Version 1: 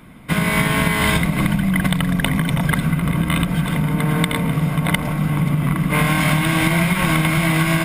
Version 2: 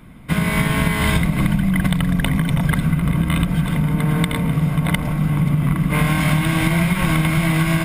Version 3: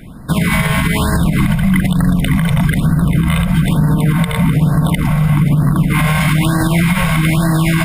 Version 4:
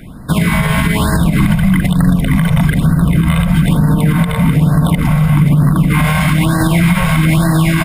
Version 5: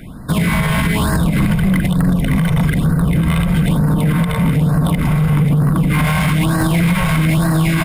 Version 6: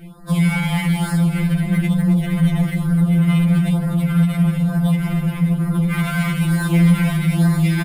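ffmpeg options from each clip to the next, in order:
ffmpeg -i in.wav -af "lowshelf=frequency=140:gain=9,volume=-3dB" out.wav
ffmpeg -i in.wav -af "alimiter=limit=-13dB:level=0:latency=1:release=60,afftfilt=real='re*(1-between(b*sr/1024,280*pow(2800/280,0.5+0.5*sin(2*PI*1.1*pts/sr))/1.41,280*pow(2800/280,0.5+0.5*sin(2*PI*1.1*pts/sr))*1.41))':imag='im*(1-between(b*sr/1024,280*pow(2800/280,0.5+0.5*sin(2*PI*1.1*pts/sr))/1.41,280*pow(2800/280,0.5+0.5*sin(2*PI*1.1*pts/sr))*1.41))':win_size=1024:overlap=0.75,volume=8.5dB" out.wav
ffmpeg -i in.wav -filter_complex "[0:a]acrossover=split=1500[link_01][link_02];[link_01]aecho=1:1:88|176:0.188|0.0339[link_03];[link_02]alimiter=limit=-13dB:level=0:latency=1:release=67[link_04];[link_03][link_04]amix=inputs=2:normalize=0,volume=1.5dB" out.wav
ffmpeg -i in.wav -af "acontrast=67,volume=-7dB" out.wav
ffmpeg -i in.wav -af "aecho=1:1:257:0.237,afftfilt=real='re*2.83*eq(mod(b,8),0)':imag='im*2.83*eq(mod(b,8),0)':win_size=2048:overlap=0.75,volume=-4dB" out.wav

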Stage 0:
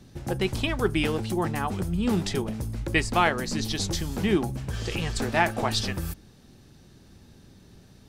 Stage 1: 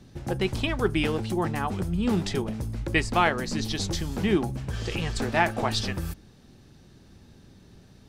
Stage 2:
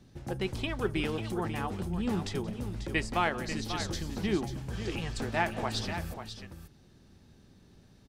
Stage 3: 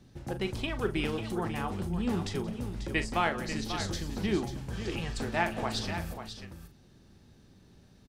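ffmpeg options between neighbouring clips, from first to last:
ffmpeg -i in.wav -af "highshelf=frequency=8100:gain=-6.5" out.wav
ffmpeg -i in.wav -af "aecho=1:1:177|541:0.112|0.335,volume=-6.5dB" out.wav
ffmpeg -i in.wav -filter_complex "[0:a]asplit=2[link_01][link_02];[link_02]adelay=41,volume=-11dB[link_03];[link_01][link_03]amix=inputs=2:normalize=0" out.wav

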